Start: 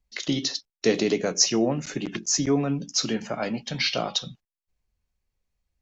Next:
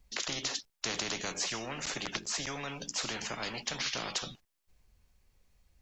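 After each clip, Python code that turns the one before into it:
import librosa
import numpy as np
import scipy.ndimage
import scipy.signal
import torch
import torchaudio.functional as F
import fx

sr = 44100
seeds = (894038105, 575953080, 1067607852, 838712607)

y = fx.spectral_comp(x, sr, ratio=4.0)
y = y * librosa.db_to_amplitude(-8.0)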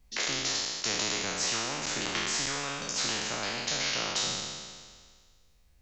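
y = fx.spec_trails(x, sr, decay_s=1.76)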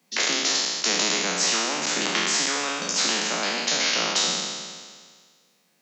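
y = scipy.signal.sosfilt(scipy.signal.butter(16, 160.0, 'highpass', fs=sr, output='sos'), x)
y = y * librosa.db_to_amplitude(7.5)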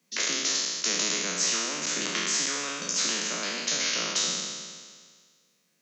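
y = fx.graphic_eq_31(x, sr, hz=(125, 800, 6300), db=(10, -11, 5))
y = y * librosa.db_to_amplitude(-5.5)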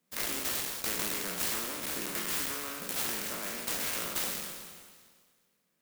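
y = fx.clock_jitter(x, sr, seeds[0], jitter_ms=0.076)
y = y * librosa.db_to_amplitude(-5.5)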